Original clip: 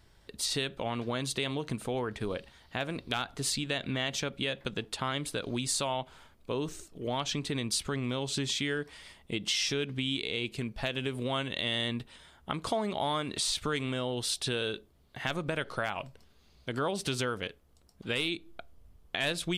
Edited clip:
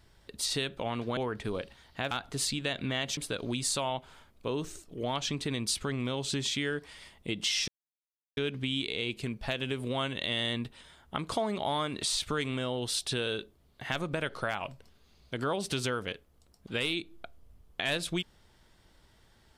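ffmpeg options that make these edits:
-filter_complex "[0:a]asplit=5[a][b][c][d][e];[a]atrim=end=1.172[f];[b]atrim=start=1.928:end=2.872[g];[c]atrim=start=3.158:end=4.222[h];[d]atrim=start=5.208:end=9.72,asetpts=PTS-STARTPTS,afade=t=out:st=4.508:d=0.004:c=hsin,apad=pad_dur=0.69[i];[e]atrim=start=9.72,asetpts=PTS-STARTPTS,afade=t=in:d=0.004:c=hsin[j];[f][g]acrossfade=d=0.004:c1=hsin:c2=hsin[k];[k][h]acrossfade=d=0.004:c1=hsin:c2=hsin[l];[i][j]concat=n=2:v=0:a=1[m];[l][m]acrossfade=d=0.004:c1=hsin:c2=hsin"

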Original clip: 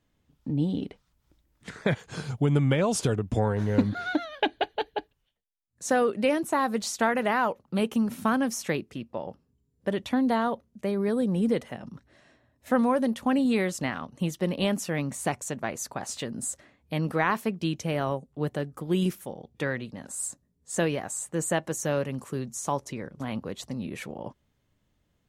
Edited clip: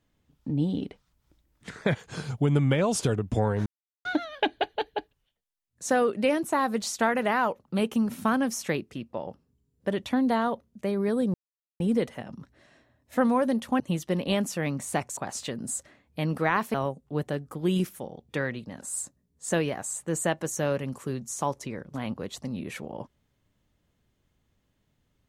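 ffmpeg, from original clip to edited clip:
-filter_complex "[0:a]asplit=7[a][b][c][d][e][f][g];[a]atrim=end=3.66,asetpts=PTS-STARTPTS,afade=t=out:st=3.656:d=0.004:c=hsin[h];[b]atrim=start=3.66:end=4.05,asetpts=PTS-STARTPTS,volume=0[i];[c]atrim=start=4.05:end=11.34,asetpts=PTS-STARTPTS,afade=t=in:d=0.004:c=hsin,afade=t=out:st=7.286:d=0.004:c=hsin,apad=pad_dur=0.46[j];[d]atrim=start=11.34:end=13.342,asetpts=PTS-STARTPTS,afade=t=in:d=0.004:c=hsin[k];[e]atrim=start=14.118:end=15.492[l];[f]atrim=start=15.908:end=17.482[m];[g]atrim=start=17.998[n];[h][i][j][k]concat=n=4:v=0:a=1[o];[o][l]acrossfade=d=0.004:c1=hsin:c2=hsin[p];[p][m]acrossfade=d=0.004:c1=hsin:c2=hsin[q];[q][n]acrossfade=d=0.004:c1=hsin:c2=hsin"

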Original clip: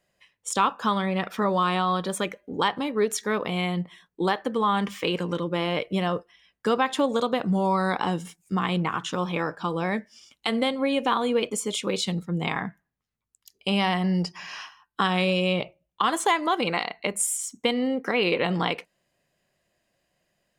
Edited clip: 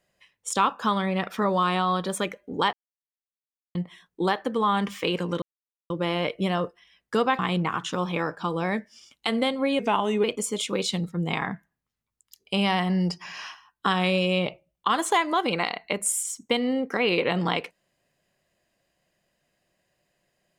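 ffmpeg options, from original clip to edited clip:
-filter_complex "[0:a]asplit=7[a][b][c][d][e][f][g];[a]atrim=end=2.73,asetpts=PTS-STARTPTS,afade=t=out:st=2.726:d=0.004:c=hsin[h];[b]atrim=start=2.73:end=3.75,asetpts=PTS-STARTPTS,volume=0[i];[c]atrim=start=3.75:end=5.42,asetpts=PTS-STARTPTS,afade=t=in:d=0.004:c=hsin,afade=t=out:st=1.666:d=0.004:c=hsin,apad=pad_dur=0.48[j];[d]atrim=start=5.42:end=6.912,asetpts=PTS-STARTPTS,afade=t=in:d=0.004:c=hsin[k];[e]atrim=start=8.588:end=10.994[l];[f]atrim=start=10.99:end=11.38,asetpts=PTS-STARTPTS,asetrate=38367,aresample=44100[m];[g]atrim=start=11.376[n];[h][i][j][k]concat=n=4:v=0:a=1[o];[o][l]acrossfade=d=0.004:c1=hsin:c2=hsin[p];[p][m]acrossfade=d=0.004:c1=hsin:c2=hsin[q];[q][n]acrossfade=d=0.004:c1=hsin:c2=hsin"

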